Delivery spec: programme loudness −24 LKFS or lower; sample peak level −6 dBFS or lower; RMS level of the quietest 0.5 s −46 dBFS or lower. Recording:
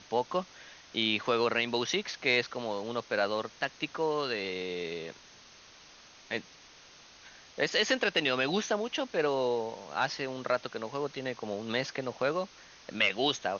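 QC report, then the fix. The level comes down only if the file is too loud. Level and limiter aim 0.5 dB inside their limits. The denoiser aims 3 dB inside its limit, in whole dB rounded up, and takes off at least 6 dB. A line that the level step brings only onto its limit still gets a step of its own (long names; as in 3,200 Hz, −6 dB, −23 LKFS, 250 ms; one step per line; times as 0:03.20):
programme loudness −31.5 LKFS: in spec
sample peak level −13.0 dBFS: in spec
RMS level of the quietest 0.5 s −55 dBFS: in spec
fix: no processing needed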